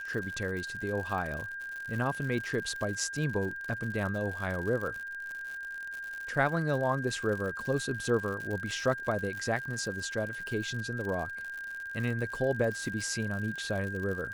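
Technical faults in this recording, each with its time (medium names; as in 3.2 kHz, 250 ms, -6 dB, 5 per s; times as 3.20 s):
crackle 98 per s -36 dBFS
whine 1.6 kHz -37 dBFS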